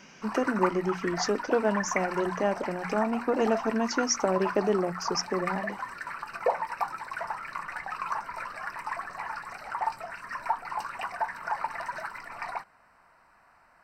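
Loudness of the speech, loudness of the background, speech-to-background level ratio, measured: −29.0 LKFS, −34.5 LKFS, 5.5 dB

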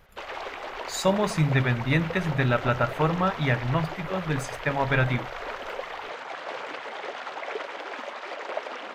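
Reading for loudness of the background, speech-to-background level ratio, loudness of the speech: −35.5 LKFS, 9.5 dB, −26.0 LKFS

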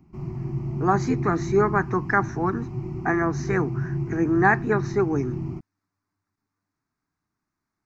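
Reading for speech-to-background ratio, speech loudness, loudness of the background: 6.0 dB, −24.5 LKFS, −30.5 LKFS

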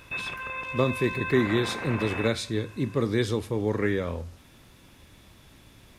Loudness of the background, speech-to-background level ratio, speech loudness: −33.5 LKFS, 6.0 dB, −27.5 LKFS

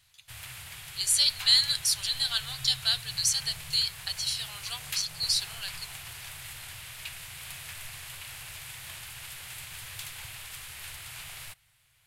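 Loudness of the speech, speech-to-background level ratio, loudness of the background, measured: −26.0 LKFS, 14.5 dB, −40.5 LKFS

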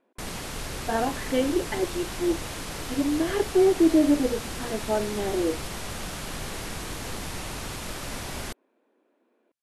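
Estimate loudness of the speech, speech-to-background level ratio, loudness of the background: −25.5 LKFS, 9.0 dB, −34.5 LKFS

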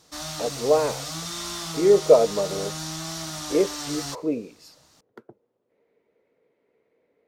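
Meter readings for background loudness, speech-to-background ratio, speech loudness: −32.0 LKFS, 9.0 dB, −23.0 LKFS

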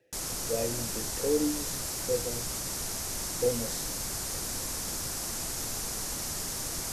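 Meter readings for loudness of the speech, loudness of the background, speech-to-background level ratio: −34.0 LKFS, −32.5 LKFS, −1.5 dB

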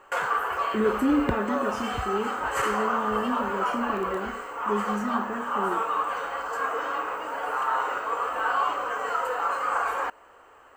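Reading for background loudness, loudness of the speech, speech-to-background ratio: −28.0 LKFS, −30.5 LKFS, −2.5 dB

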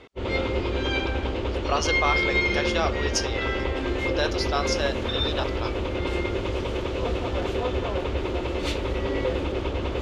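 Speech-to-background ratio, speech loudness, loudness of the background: −3.0 dB, −29.5 LKFS, −26.5 LKFS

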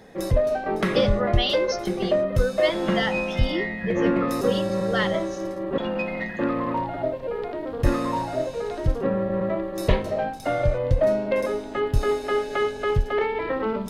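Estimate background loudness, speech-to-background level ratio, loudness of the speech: −25.0 LKFS, −4.0 dB, −29.0 LKFS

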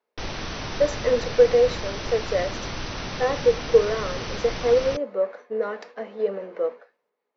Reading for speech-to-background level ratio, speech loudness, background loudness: 8.5 dB, −24.0 LKFS, −32.5 LKFS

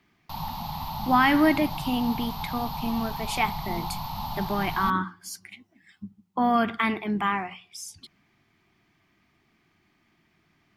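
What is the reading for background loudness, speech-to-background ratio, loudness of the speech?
−34.0 LKFS, 7.5 dB, −26.5 LKFS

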